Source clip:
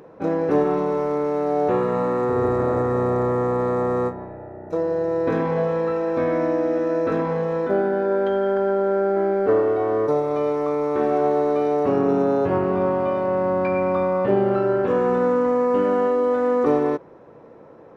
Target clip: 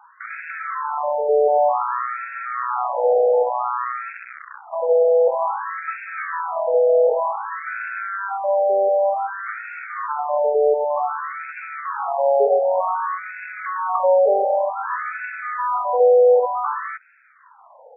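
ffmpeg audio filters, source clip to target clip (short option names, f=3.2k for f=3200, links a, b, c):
-af "acontrast=83,acrusher=bits=5:dc=4:mix=0:aa=0.000001,afftfilt=real='re*between(b*sr/1024,590*pow(1900/590,0.5+0.5*sin(2*PI*0.54*pts/sr))/1.41,590*pow(1900/590,0.5+0.5*sin(2*PI*0.54*pts/sr))*1.41)':imag='im*between(b*sr/1024,590*pow(1900/590,0.5+0.5*sin(2*PI*0.54*pts/sr))/1.41,590*pow(1900/590,0.5+0.5*sin(2*PI*0.54*pts/sr))*1.41)':win_size=1024:overlap=0.75,volume=1.5dB"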